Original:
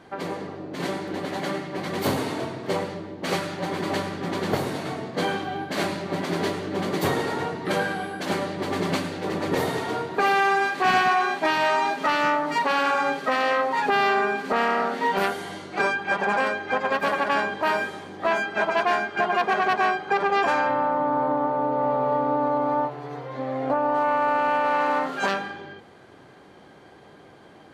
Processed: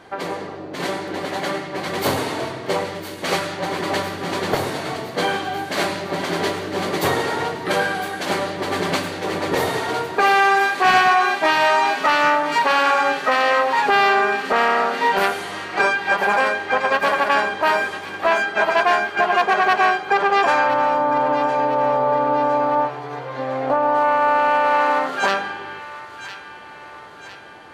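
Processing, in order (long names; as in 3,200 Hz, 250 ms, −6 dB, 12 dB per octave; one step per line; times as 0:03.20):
parametric band 210 Hz −7 dB 1.5 octaves
mains-hum notches 50/100/150 Hz
delay with a high-pass on its return 1,007 ms, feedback 55%, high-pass 1,600 Hz, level −10.5 dB
level +6 dB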